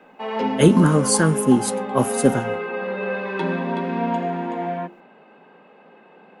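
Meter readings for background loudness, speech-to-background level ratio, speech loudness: -26.0 LUFS, 7.5 dB, -18.5 LUFS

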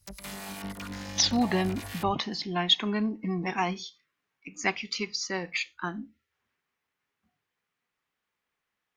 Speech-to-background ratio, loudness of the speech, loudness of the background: 10.0 dB, -29.0 LUFS, -39.0 LUFS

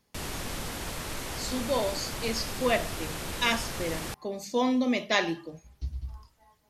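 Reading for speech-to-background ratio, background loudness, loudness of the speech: 5.5 dB, -35.5 LUFS, -30.0 LUFS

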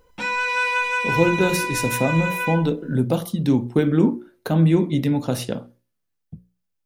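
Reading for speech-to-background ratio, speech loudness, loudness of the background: 1.5 dB, -21.5 LUFS, -23.0 LUFS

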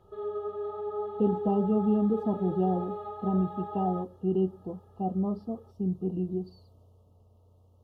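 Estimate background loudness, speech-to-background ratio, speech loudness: -37.0 LUFS, 7.0 dB, -30.0 LUFS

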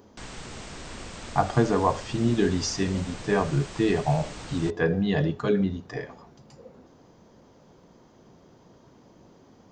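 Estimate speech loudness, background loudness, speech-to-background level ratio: -26.0 LUFS, -40.5 LUFS, 14.5 dB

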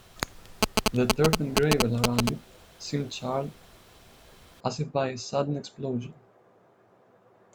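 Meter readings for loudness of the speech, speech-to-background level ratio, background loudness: -29.5 LUFS, -1.0 dB, -28.5 LUFS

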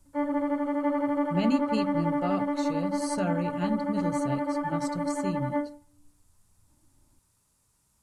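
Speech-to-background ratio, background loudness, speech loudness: -3.5 dB, -29.5 LUFS, -33.0 LUFS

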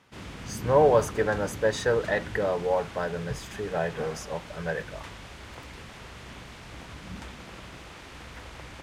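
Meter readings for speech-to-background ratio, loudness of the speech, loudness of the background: 13.5 dB, -27.5 LUFS, -41.0 LUFS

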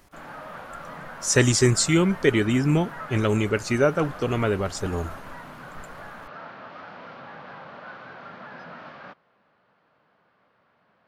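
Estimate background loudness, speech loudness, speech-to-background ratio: -40.0 LUFS, -22.5 LUFS, 17.5 dB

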